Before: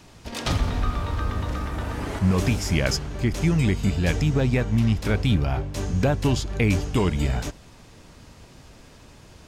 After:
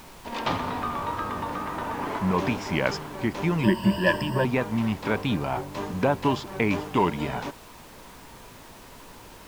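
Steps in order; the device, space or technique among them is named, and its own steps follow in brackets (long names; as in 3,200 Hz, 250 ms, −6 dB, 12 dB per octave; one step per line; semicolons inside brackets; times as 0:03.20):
horn gramophone (band-pass filter 200–3,300 Hz; parametric band 970 Hz +10 dB 0.42 octaves; tape wow and flutter; pink noise bed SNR 20 dB)
0:03.63–0:04.45: EQ curve with evenly spaced ripples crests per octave 1.3, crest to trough 18 dB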